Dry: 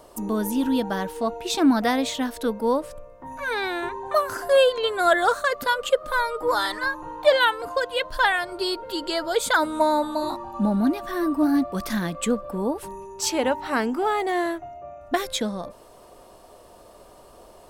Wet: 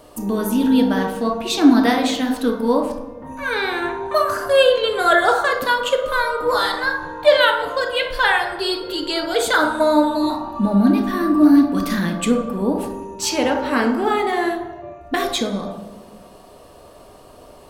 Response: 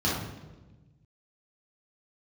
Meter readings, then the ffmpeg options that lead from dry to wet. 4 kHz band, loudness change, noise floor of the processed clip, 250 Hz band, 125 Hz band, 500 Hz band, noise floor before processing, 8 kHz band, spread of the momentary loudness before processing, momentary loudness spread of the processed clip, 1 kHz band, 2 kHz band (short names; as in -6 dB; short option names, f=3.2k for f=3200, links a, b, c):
+5.5 dB, +5.5 dB, -44 dBFS, +7.5 dB, +6.5 dB, +4.5 dB, -49 dBFS, +2.5 dB, 9 LU, 10 LU, +4.0 dB, +5.0 dB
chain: -filter_complex "[0:a]asplit=2[a][b];[1:a]atrim=start_sample=2205,lowshelf=f=300:g=-10[c];[b][c]afir=irnorm=-1:irlink=0,volume=-13dB[d];[a][d]amix=inputs=2:normalize=0,volume=3.5dB"